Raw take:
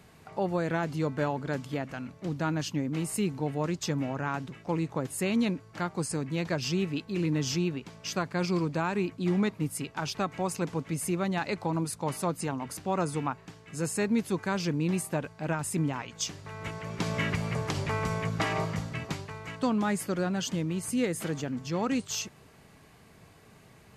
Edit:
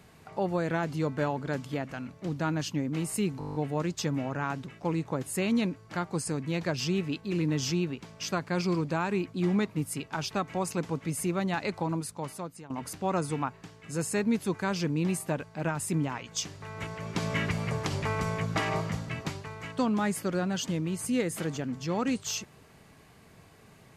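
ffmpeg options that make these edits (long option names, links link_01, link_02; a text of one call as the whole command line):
ffmpeg -i in.wav -filter_complex "[0:a]asplit=10[link_01][link_02][link_03][link_04][link_05][link_06][link_07][link_08][link_09][link_10];[link_01]atrim=end=3.412[link_11];[link_02]atrim=start=3.388:end=3.412[link_12];[link_03]atrim=start=3.388:end=3.412[link_13];[link_04]atrim=start=3.388:end=3.412[link_14];[link_05]atrim=start=3.388:end=3.412[link_15];[link_06]atrim=start=3.388:end=3.412[link_16];[link_07]atrim=start=3.388:end=3.412[link_17];[link_08]atrim=start=3.388:end=3.412[link_18];[link_09]atrim=start=3.388:end=12.54,asetpts=PTS-STARTPTS,afade=type=out:start_time=8.232:duration=0.92:silence=0.125893[link_19];[link_10]atrim=start=12.54,asetpts=PTS-STARTPTS,afade=type=in:duration=0.004:curve=hsin:silence=0.125893[link_20];[link_11][link_12]acrossfade=duration=0.004:curve1=hsin:curve2=hsin[link_21];[link_21][link_13]acrossfade=duration=0.004:curve1=hsin:curve2=hsin[link_22];[link_22][link_14]acrossfade=duration=0.004:curve1=hsin:curve2=hsin[link_23];[link_23][link_15]acrossfade=duration=0.004:curve1=hsin:curve2=hsin[link_24];[link_24][link_16]acrossfade=duration=0.004:curve1=hsin:curve2=hsin[link_25];[link_25][link_17]acrossfade=duration=0.004:curve1=hsin:curve2=hsin[link_26];[link_26][link_18]acrossfade=duration=0.004:curve1=hsin:curve2=hsin[link_27];[link_19][link_20]concat=n=2:v=0:a=1[link_28];[link_27][link_28]acrossfade=duration=0.004:curve1=hsin:curve2=hsin" out.wav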